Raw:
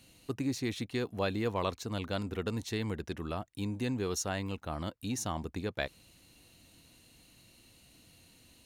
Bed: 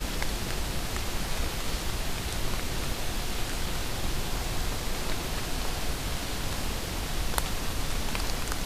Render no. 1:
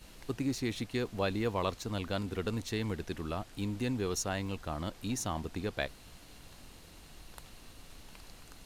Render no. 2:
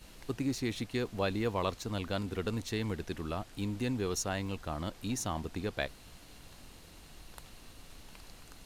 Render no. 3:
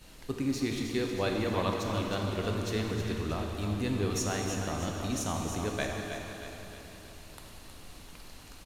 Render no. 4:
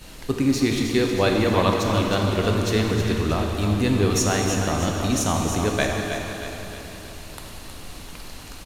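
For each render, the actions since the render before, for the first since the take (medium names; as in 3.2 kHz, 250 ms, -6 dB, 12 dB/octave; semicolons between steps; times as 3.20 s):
add bed -22.5 dB
no audible change
feedback delay 316 ms, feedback 51%, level -8 dB; plate-style reverb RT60 3.2 s, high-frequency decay 0.9×, DRR 1 dB
trim +10.5 dB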